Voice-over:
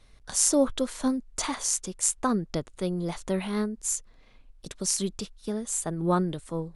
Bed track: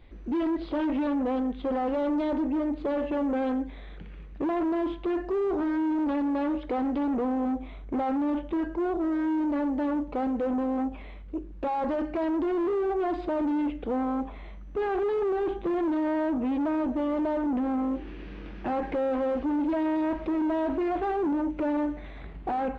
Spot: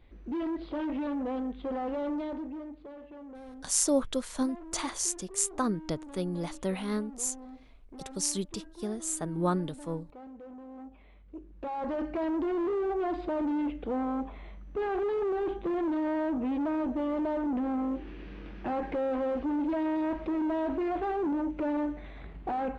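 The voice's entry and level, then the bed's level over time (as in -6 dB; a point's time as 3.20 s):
3.35 s, -3.5 dB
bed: 2.12 s -5.5 dB
2.98 s -19 dB
10.64 s -19 dB
12.05 s -3 dB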